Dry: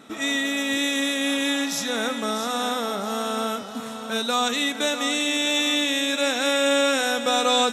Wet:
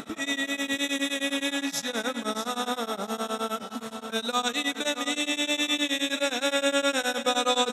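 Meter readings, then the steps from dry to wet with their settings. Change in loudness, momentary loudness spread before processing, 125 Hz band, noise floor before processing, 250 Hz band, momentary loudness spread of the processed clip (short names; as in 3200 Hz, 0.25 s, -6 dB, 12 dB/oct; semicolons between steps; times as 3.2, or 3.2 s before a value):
-4.5 dB, 7 LU, n/a, -34 dBFS, -4.5 dB, 7 LU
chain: upward compressor, threshold -28 dBFS; on a send: echo 0.232 s -13.5 dB; on the sum: beating tremolo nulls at 9.6 Hz; gain -1.5 dB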